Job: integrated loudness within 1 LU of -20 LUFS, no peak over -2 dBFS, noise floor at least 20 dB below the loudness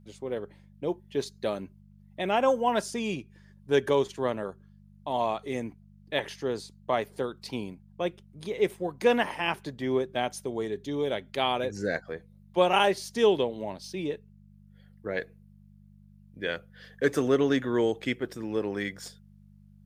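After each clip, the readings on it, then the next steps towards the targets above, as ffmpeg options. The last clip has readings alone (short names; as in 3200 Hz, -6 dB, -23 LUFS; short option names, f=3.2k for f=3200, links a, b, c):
hum 50 Hz; harmonics up to 200 Hz; hum level -52 dBFS; loudness -29.5 LUFS; peak -9.0 dBFS; loudness target -20.0 LUFS
-> -af "bandreject=f=50:t=h:w=4,bandreject=f=100:t=h:w=4,bandreject=f=150:t=h:w=4,bandreject=f=200:t=h:w=4"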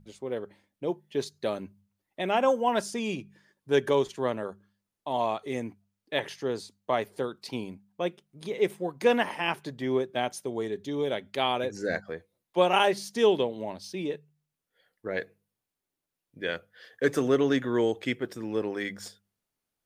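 hum none; loudness -29.5 LUFS; peak -9.0 dBFS; loudness target -20.0 LUFS
-> -af "volume=9.5dB,alimiter=limit=-2dB:level=0:latency=1"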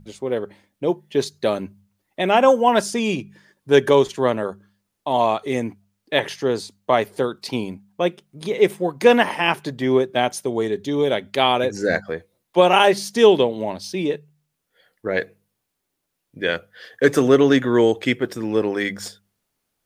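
loudness -20.0 LUFS; peak -2.0 dBFS; noise floor -78 dBFS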